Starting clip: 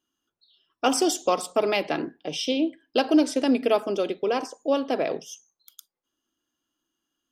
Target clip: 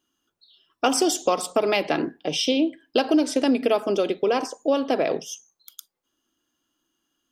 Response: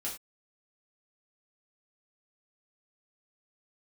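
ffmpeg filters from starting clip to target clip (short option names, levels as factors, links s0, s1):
-af "acompressor=threshold=0.0631:ratio=2.5,volume=1.88"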